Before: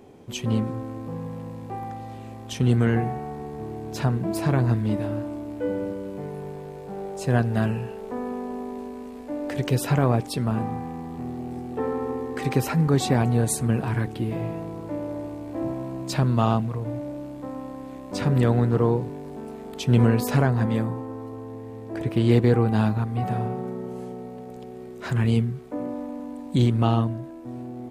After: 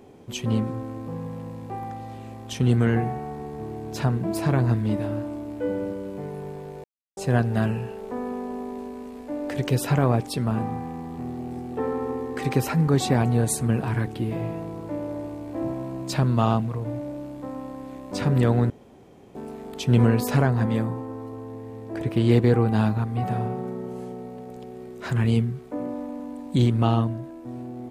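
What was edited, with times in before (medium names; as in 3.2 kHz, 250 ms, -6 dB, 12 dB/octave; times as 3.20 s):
6.84–7.17 s: mute
18.70–19.35 s: room tone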